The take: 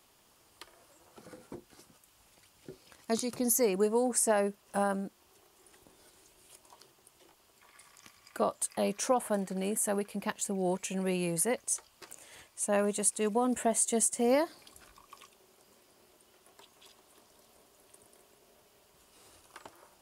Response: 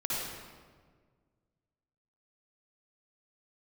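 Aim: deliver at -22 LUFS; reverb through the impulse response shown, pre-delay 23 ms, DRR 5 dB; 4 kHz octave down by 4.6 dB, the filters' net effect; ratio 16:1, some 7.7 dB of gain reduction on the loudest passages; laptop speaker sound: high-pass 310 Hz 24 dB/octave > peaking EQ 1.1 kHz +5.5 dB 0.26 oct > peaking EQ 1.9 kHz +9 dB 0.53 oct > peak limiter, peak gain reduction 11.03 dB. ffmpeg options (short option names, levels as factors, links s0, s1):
-filter_complex "[0:a]equalizer=f=4000:t=o:g=-8,acompressor=threshold=0.0316:ratio=16,asplit=2[s0][s1];[1:a]atrim=start_sample=2205,adelay=23[s2];[s1][s2]afir=irnorm=-1:irlink=0,volume=0.266[s3];[s0][s3]amix=inputs=2:normalize=0,highpass=f=310:w=0.5412,highpass=f=310:w=1.3066,equalizer=f=1100:t=o:w=0.26:g=5.5,equalizer=f=1900:t=o:w=0.53:g=9,volume=8.41,alimiter=limit=0.266:level=0:latency=1"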